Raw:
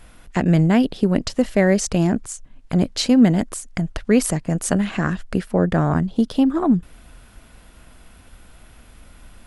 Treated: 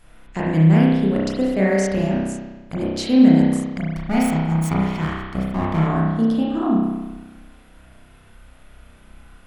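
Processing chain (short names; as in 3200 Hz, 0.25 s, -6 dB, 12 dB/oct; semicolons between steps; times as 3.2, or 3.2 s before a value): 3.94–5.87 minimum comb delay 0.91 ms; spring tank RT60 1.2 s, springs 31 ms, chirp 45 ms, DRR -5.5 dB; gain -7 dB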